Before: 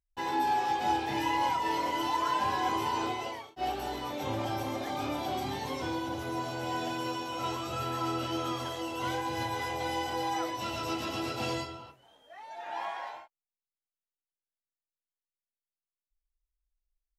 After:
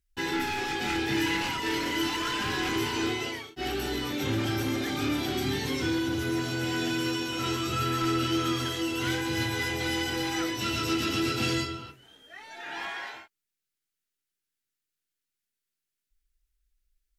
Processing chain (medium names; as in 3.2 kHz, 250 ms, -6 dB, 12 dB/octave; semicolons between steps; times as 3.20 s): sine folder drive 5 dB, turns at -19.5 dBFS; high-order bell 760 Hz -13 dB 1.3 oct